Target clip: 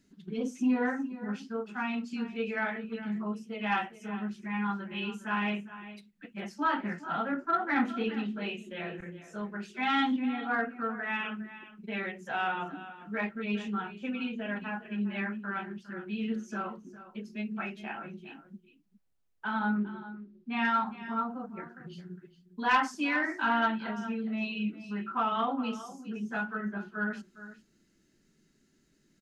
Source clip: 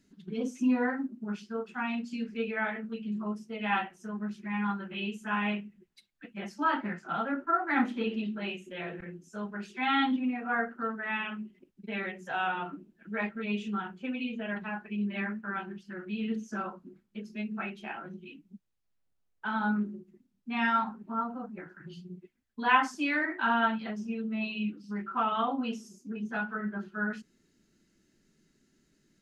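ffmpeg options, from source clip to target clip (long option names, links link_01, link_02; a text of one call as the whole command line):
ffmpeg -i in.wav -filter_complex "[0:a]aecho=1:1:409:0.178,asoftclip=type=tanh:threshold=-15.5dB,asettb=1/sr,asplit=3[link_01][link_02][link_03];[link_01]atrim=end=19.594[link_04];[link_02]atrim=start=19.59:end=20.65,asetpts=PTS-STARTPTS,afade=type=in:duration=0.004:curve=qsin,afade=type=out:start_time=1.056:duration=0.004:curve=qsin,lowpass=frequency=4800:width=0.5412,lowpass=frequency=4800:width=1.3066[link_05];[link_03]atrim=start=20.646[link_06];[link_04][link_05]acrossfade=duration=0.004:curve1=hsin:curve2=qsin[link_07];[link_07][link_06]acrossfade=duration=0.004:curve1=qsin:curve2=hsin" out.wav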